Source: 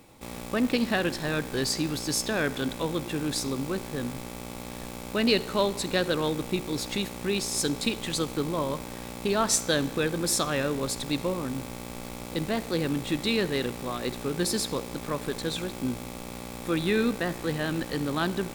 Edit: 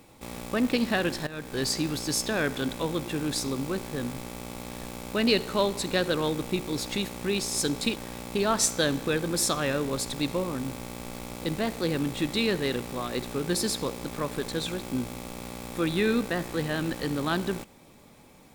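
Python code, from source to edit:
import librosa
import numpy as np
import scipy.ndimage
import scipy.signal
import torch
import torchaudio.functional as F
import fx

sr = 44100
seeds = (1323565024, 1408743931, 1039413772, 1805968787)

y = fx.edit(x, sr, fx.fade_in_from(start_s=1.27, length_s=0.38, floor_db=-16.5),
    fx.cut(start_s=7.96, length_s=0.9), tone=tone)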